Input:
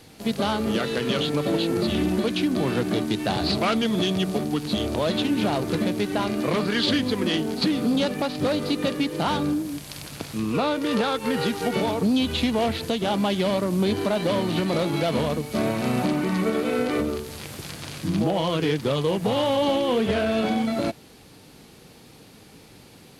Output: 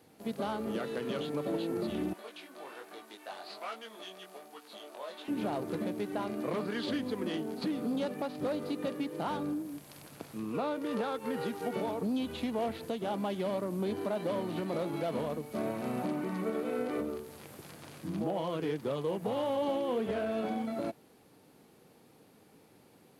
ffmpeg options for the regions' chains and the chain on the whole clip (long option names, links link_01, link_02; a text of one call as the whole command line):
ffmpeg -i in.wav -filter_complex "[0:a]asettb=1/sr,asplit=3[link_01][link_02][link_03];[link_01]atrim=end=2.134[link_04];[link_02]atrim=start=2.13:end=5.28,asetpts=PTS-STARTPTS,afade=type=in:duration=0.004:curve=qsin,afade=type=out:start_time=3.146:duration=0.004:curve=qsin,highpass=770,flanger=delay=17.5:depth=4.5:speed=1.2[link_05];[link_03]atrim=start=5.276[link_06];[link_04][link_05]acrossfade=duration=0.004:curve1=hsin:curve2=qsin[link_07];[link_07][link_06]acrossfade=duration=0.004:curve1=qsin:curve2=hsin,highpass=frequency=310:poles=1,equalizer=frequency=4500:width=0.39:gain=-11.5,volume=-6.5dB" out.wav